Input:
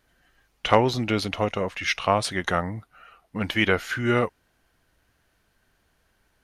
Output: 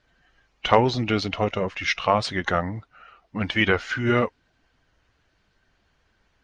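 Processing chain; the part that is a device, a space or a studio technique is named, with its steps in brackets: clip after many re-uploads (LPF 6200 Hz 24 dB/oct; bin magnitudes rounded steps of 15 dB); gain +1.5 dB

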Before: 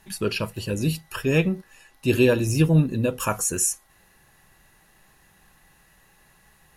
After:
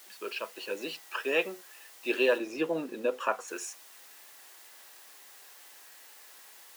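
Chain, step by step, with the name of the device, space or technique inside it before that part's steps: dictaphone (BPF 390–3400 Hz; AGC gain up to 8 dB; wow and flutter; white noise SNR 20 dB); 2.38–3.48 tilt -2 dB/oct; Bessel high-pass 410 Hz, order 4; gain -8.5 dB

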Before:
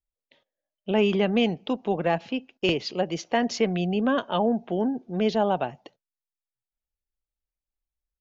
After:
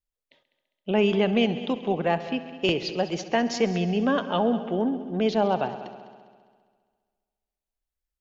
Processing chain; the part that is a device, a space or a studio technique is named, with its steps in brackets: multi-head tape echo (multi-head echo 67 ms, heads all three, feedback 57%, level -18.5 dB; wow and flutter 25 cents)

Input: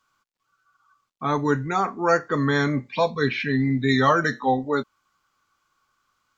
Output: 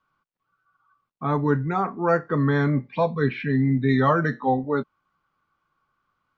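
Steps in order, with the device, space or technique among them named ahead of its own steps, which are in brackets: phone in a pocket (LPF 3900 Hz 12 dB/oct; bell 160 Hz +6 dB 0.48 oct; high shelf 2300 Hz -11 dB)

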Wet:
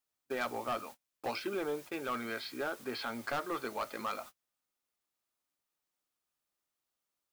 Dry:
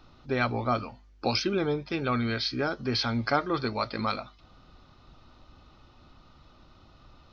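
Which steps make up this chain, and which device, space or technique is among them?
aircraft radio (BPF 370–2600 Hz; hard clip -25 dBFS, distortion -10 dB; white noise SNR 15 dB; gate -43 dBFS, range -33 dB); gain -4.5 dB

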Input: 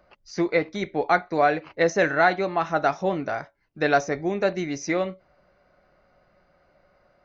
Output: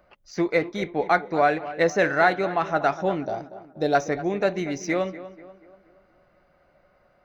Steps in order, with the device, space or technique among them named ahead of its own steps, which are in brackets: 3.23–3.95 band shelf 1700 Hz -15 dB; exciter from parts (in parallel at -7 dB: HPF 2500 Hz 12 dB/oct + soft clip -39 dBFS, distortion -4 dB + HPF 3800 Hz 24 dB/oct); on the sum: tape echo 0.24 s, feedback 50%, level -13.5 dB, low-pass 2100 Hz

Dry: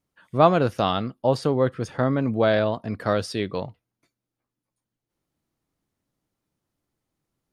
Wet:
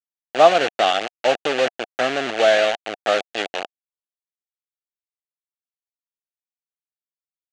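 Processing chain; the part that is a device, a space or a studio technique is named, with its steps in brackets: hand-held game console (bit-crush 4-bit; speaker cabinet 470–6000 Hz, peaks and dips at 720 Hz +8 dB, 1000 Hz -10 dB, 1700 Hz +3 dB, 2800 Hz +6 dB, 5200 Hz -7 dB); gain +3 dB

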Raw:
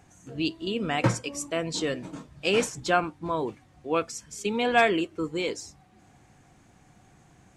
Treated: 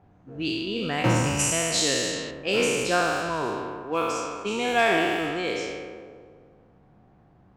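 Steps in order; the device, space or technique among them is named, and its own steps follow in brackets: spectral trails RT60 2.18 s; 1.39–2.31 high shelf 2300 Hz +9 dB; cassette deck with a dynamic noise filter (white noise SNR 27 dB; low-pass opened by the level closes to 760 Hz, open at -18.5 dBFS); gain -3 dB

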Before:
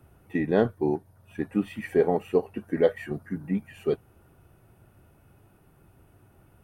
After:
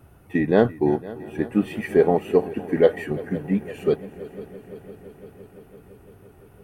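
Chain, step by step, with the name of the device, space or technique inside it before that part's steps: multi-head tape echo (multi-head echo 0.17 s, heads second and third, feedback 70%, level -19 dB; wow and flutter 23 cents); gain +5 dB

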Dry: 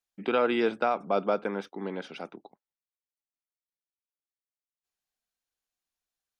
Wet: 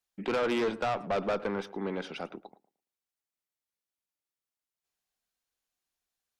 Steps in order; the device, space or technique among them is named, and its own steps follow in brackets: rockabilly slapback (tube stage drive 27 dB, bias 0.2; tape echo 0.11 s, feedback 24%, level -16 dB, low-pass 1600 Hz); gain +2.5 dB

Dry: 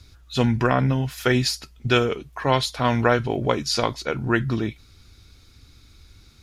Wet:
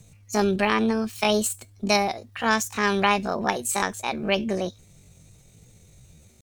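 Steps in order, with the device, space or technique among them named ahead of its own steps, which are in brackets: chipmunk voice (pitch shift +9 st); gain -2 dB

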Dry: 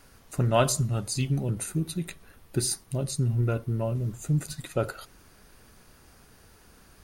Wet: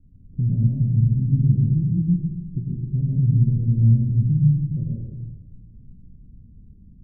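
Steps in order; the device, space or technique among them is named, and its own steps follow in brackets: club heard from the street (limiter -20.5 dBFS, peak gain reduction 11 dB; LPF 210 Hz 24 dB/oct; reverb RT60 1.1 s, pre-delay 95 ms, DRR -4 dB); gain +6.5 dB

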